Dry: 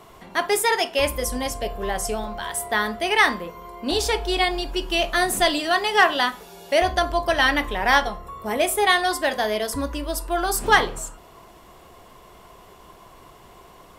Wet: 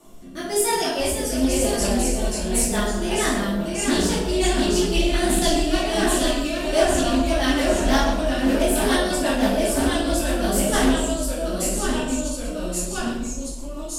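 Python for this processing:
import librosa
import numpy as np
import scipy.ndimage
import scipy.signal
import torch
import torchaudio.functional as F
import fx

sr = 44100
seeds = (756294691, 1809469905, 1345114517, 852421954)

p1 = fx.graphic_eq_10(x, sr, hz=(125, 250, 500, 1000, 2000, 4000, 8000), db=(-9, 3, -5, -6, -12, -5, 6))
p2 = fx.rider(p1, sr, range_db=4, speed_s=0.5)
p3 = p1 + F.gain(torch.from_numpy(p2), -2.5).numpy()
p4 = fx.echo_pitch(p3, sr, ms=460, semitones=-1, count=3, db_per_echo=-3.0)
p5 = p4 + fx.echo_single(p4, sr, ms=115, db=-13.5, dry=0)
p6 = fx.rotary_switch(p5, sr, hz=1.0, then_hz=6.0, switch_at_s=1.88)
p7 = fx.room_shoebox(p6, sr, seeds[0], volume_m3=250.0, walls='mixed', distance_m=2.5)
p8 = fx.doppler_dist(p7, sr, depth_ms=0.15)
y = F.gain(torch.from_numpy(p8), -7.0).numpy()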